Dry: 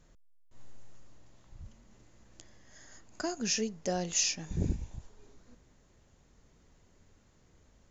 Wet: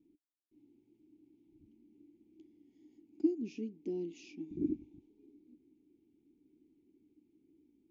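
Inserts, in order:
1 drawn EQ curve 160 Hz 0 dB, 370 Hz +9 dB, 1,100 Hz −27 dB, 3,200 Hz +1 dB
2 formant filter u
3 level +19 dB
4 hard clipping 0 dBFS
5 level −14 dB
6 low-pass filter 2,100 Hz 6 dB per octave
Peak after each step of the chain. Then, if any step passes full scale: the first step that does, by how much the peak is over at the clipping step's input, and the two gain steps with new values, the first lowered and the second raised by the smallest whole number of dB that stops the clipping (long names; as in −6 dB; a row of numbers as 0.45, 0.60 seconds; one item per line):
−16.0, −24.0, −5.0, −5.0, −19.0, −19.0 dBFS
no step passes full scale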